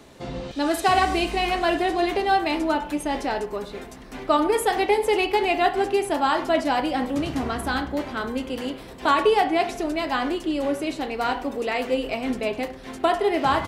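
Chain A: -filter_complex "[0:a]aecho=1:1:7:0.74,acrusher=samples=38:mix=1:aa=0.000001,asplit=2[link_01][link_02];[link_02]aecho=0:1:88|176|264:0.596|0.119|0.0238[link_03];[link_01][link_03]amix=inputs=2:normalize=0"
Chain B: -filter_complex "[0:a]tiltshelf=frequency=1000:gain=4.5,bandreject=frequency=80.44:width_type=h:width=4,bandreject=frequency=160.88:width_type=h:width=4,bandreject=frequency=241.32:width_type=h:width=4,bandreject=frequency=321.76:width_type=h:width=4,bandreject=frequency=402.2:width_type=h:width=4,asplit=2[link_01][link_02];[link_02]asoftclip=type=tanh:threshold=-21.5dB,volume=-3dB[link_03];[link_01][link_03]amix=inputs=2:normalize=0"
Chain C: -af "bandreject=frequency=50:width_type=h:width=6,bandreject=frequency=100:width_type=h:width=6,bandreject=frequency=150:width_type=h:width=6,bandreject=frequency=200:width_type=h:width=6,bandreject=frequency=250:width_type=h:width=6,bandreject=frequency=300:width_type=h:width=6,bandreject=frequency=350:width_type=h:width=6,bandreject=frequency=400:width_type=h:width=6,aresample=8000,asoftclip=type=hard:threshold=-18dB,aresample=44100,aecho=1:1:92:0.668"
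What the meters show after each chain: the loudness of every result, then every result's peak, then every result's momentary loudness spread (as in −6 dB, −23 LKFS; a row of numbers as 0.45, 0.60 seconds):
−20.5, −19.5, −24.0 LKFS; −3.5, −5.5, −11.5 dBFS; 10, 7, 8 LU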